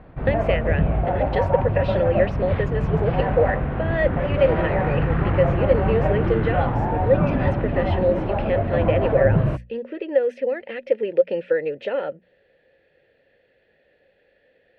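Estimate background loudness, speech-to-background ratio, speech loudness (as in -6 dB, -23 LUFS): -23.0 LUFS, -1.5 dB, -24.5 LUFS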